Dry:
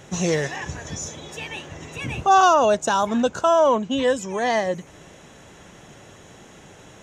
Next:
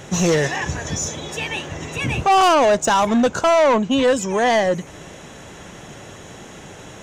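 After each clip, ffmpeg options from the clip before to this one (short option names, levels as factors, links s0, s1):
-af "asoftclip=type=tanh:threshold=0.119,volume=2.37"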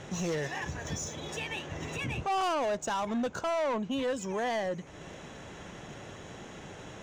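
-af "alimiter=limit=0.1:level=0:latency=1:release=383,adynamicsmooth=sensitivity=7:basefreq=6400,volume=0.473"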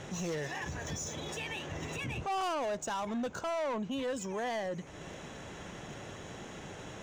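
-af "highshelf=f=10000:g=4.5,alimiter=level_in=2.11:limit=0.0631:level=0:latency=1:release=41,volume=0.473"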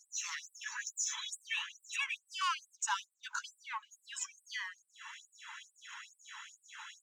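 -af "afftdn=nr=13:nf=-53,afftfilt=real='re*gte(b*sr/1024,830*pow(7800/830,0.5+0.5*sin(2*PI*2.3*pts/sr)))':imag='im*gte(b*sr/1024,830*pow(7800/830,0.5+0.5*sin(2*PI*2.3*pts/sr)))':win_size=1024:overlap=0.75,volume=1.88"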